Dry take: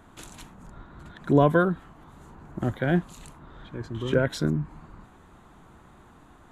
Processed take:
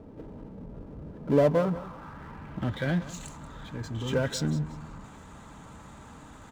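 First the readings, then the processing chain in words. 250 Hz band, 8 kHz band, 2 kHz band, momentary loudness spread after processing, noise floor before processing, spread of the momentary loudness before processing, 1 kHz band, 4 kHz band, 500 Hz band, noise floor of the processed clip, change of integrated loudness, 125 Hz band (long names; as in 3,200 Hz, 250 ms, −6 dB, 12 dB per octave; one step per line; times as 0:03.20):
−4.0 dB, +4.0 dB, −5.5 dB, 24 LU, −53 dBFS, 21 LU, −6.5 dB, +1.0 dB, −1.5 dB, −48 dBFS, −4.0 dB, −3.0 dB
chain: low-pass filter sweep 460 Hz → 7,400 Hz, 0:01.18–0:03.25
power curve on the samples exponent 0.7
notch comb filter 360 Hz
on a send: repeating echo 183 ms, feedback 26%, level −16 dB
on the sum: level −8 dB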